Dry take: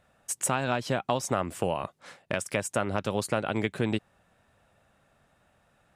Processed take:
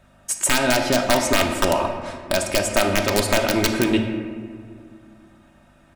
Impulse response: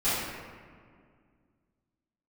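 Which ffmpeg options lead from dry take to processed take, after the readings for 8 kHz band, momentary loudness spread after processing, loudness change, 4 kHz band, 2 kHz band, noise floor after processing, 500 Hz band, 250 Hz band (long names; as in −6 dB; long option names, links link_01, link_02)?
+10.5 dB, 12 LU, +9.5 dB, +15.0 dB, +11.5 dB, −54 dBFS, +9.5 dB, +10.0 dB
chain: -filter_complex "[0:a]aeval=exprs='(mod(5.62*val(0)+1,2)-1)/5.62':channel_layout=same,aecho=1:1:3.2:0.64,aeval=exprs='val(0)+0.001*(sin(2*PI*50*n/s)+sin(2*PI*2*50*n/s)/2+sin(2*PI*3*50*n/s)/3+sin(2*PI*4*50*n/s)/4+sin(2*PI*5*50*n/s)/5)':channel_layout=same,asplit=2[link_01][link_02];[1:a]atrim=start_sample=2205,lowpass=8700[link_03];[link_02][link_03]afir=irnorm=-1:irlink=0,volume=-14.5dB[link_04];[link_01][link_04]amix=inputs=2:normalize=0,volume=6dB"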